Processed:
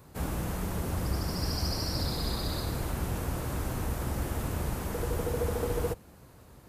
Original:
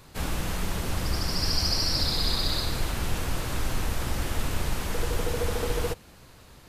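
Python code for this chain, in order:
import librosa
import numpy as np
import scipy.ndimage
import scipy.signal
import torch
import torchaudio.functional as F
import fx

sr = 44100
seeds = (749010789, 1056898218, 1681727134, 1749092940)

y = scipy.signal.sosfilt(scipy.signal.butter(2, 48.0, 'highpass', fs=sr, output='sos'), x)
y = fx.peak_eq(y, sr, hz=3600.0, db=-11.0, octaves=2.5)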